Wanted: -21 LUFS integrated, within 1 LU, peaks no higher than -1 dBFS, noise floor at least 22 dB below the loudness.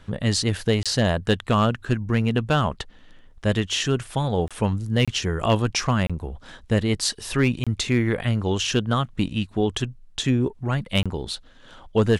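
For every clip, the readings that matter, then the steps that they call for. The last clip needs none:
clipped 0.2%; flat tops at -10.5 dBFS; dropouts 6; longest dropout 26 ms; loudness -23.5 LUFS; peak -10.5 dBFS; loudness target -21.0 LUFS
-> clip repair -10.5 dBFS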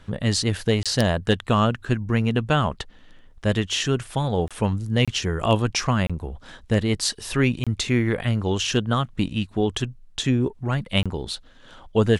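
clipped 0.0%; dropouts 6; longest dropout 26 ms
-> interpolate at 0.83/4.48/5.05/6.07/7.64/11.03, 26 ms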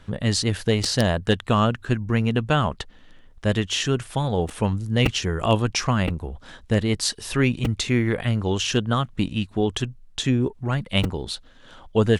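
dropouts 0; loudness -23.5 LUFS; peak -1.5 dBFS; loudness target -21.0 LUFS
-> gain +2.5 dB; limiter -1 dBFS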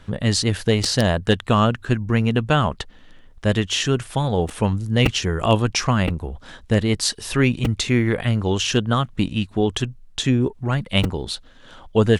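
loudness -21.0 LUFS; peak -1.0 dBFS; noise floor -47 dBFS

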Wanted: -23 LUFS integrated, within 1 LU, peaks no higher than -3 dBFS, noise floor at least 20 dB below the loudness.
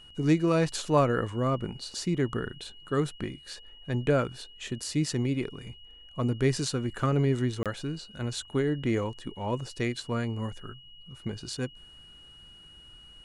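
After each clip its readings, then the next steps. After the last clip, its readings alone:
dropouts 1; longest dropout 27 ms; steady tone 2900 Hz; tone level -50 dBFS; loudness -30.0 LUFS; peak -11.5 dBFS; loudness target -23.0 LUFS
-> interpolate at 7.63, 27 ms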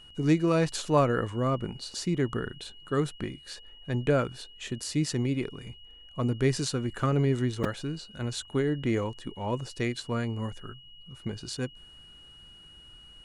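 dropouts 0; steady tone 2900 Hz; tone level -50 dBFS
-> notch 2900 Hz, Q 30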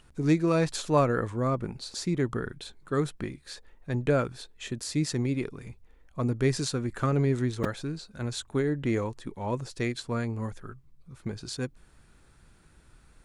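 steady tone none; loudness -30.0 LUFS; peak -11.5 dBFS; loudness target -23.0 LUFS
-> gain +7 dB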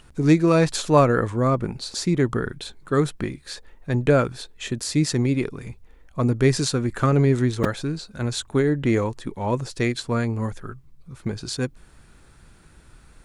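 loudness -23.0 LUFS; peak -4.5 dBFS; noise floor -52 dBFS

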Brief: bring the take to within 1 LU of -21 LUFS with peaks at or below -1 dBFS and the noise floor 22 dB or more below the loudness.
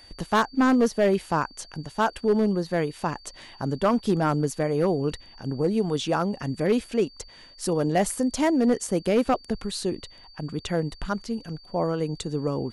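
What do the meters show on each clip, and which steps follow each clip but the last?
clipped 0.7%; flat tops at -14.5 dBFS; steady tone 4600 Hz; tone level -49 dBFS; loudness -25.5 LUFS; peak -14.5 dBFS; loudness target -21.0 LUFS
-> clip repair -14.5 dBFS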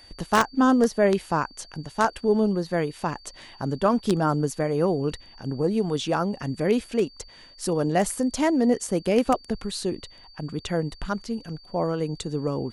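clipped 0.0%; steady tone 4600 Hz; tone level -49 dBFS
-> notch 4600 Hz, Q 30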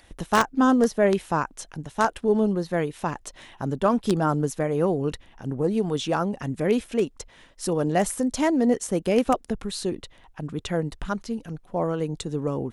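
steady tone none; loudness -25.0 LUFS; peak -5.5 dBFS; loudness target -21.0 LUFS
-> gain +4 dB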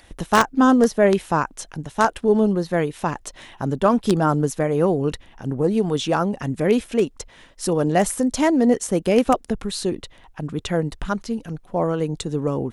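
loudness -21.0 LUFS; peak -1.5 dBFS; noise floor -50 dBFS

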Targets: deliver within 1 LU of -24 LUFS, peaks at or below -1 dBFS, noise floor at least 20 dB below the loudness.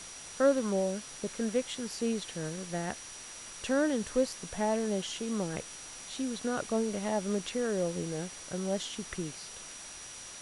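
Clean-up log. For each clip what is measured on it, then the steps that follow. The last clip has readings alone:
steady tone 5800 Hz; tone level -48 dBFS; noise floor -46 dBFS; noise floor target -54 dBFS; loudness -33.5 LUFS; peak -14.0 dBFS; loudness target -24.0 LUFS
-> notch 5800 Hz, Q 30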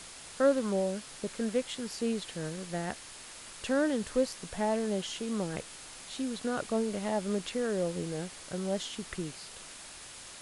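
steady tone none; noise floor -48 dBFS; noise floor target -53 dBFS
-> denoiser 6 dB, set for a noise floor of -48 dBFS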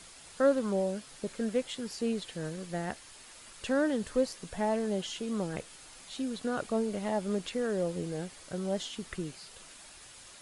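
noise floor -52 dBFS; noise floor target -54 dBFS
-> denoiser 6 dB, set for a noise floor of -52 dBFS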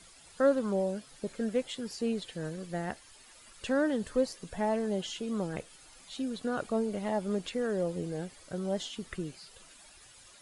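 noise floor -56 dBFS; loudness -33.5 LUFS; peak -14.0 dBFS; loudness target -24.0 LUFS
-> gain +9.5 dB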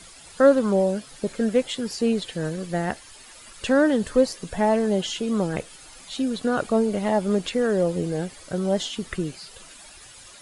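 loudness -24.0 LUFS; peak -4.5 dBFS; noise floor -47 dBFS

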